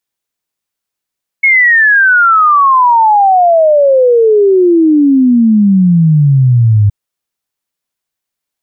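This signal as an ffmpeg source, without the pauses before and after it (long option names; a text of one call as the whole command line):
ffmpeg -f lavfi -i "aevalsrc='0.631*clip(min(t,5.47-t)/0.01,0,1)*sin(2*PI*2200*5.47/log(100/2200)*(exp(log(100/2200)*t/5.47)-1))':duration=5.47:sample_rate=44100" out.wav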